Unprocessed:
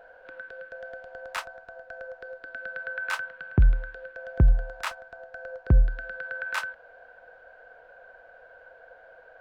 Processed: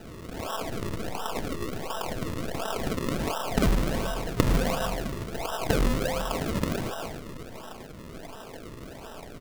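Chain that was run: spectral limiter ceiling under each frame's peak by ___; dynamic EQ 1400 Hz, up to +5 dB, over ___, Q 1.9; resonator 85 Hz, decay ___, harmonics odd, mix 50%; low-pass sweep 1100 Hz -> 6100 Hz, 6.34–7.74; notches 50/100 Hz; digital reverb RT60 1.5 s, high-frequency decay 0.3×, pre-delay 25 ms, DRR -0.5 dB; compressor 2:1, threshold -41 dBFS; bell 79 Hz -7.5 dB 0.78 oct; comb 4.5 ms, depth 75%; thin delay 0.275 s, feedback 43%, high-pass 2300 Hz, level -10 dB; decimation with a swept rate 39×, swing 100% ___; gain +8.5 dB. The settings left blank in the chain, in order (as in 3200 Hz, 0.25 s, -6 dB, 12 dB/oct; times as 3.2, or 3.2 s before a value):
28 dB, -43 dBFS, 1.6 s, 1.4 Hz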